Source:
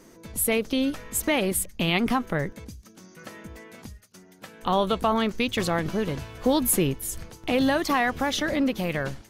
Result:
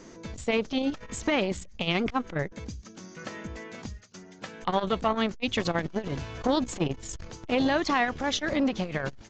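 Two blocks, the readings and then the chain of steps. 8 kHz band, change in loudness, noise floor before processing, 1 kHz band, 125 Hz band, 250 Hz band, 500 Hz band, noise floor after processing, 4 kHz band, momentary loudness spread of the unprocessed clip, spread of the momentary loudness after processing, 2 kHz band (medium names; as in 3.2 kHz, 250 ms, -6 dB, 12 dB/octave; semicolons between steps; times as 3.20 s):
-11.0 dB, -3.5 dB, -53 dBFS, -2.5 dB, -3.0 dB, -3.0 dB, -3.0 dB, -49 dBFS, -2.5 dB, 20 LU, 16 LU, -2.5 dB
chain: in parallel at -1.5 dB: compression, threshold -36 dBFS, peak gain reduction 18 dB; on the sum: resampled via 16 kHz; transformer saturation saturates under 450 Hz; trim -1.5 dB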